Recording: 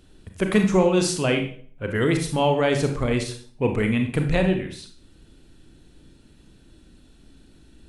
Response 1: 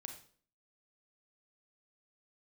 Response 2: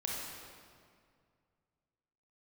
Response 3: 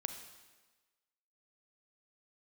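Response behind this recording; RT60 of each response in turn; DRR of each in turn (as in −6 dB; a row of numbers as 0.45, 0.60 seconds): 1; 0.50, 2.1, 1.3 seconds; 4.0, −3.5, 7.0 decibels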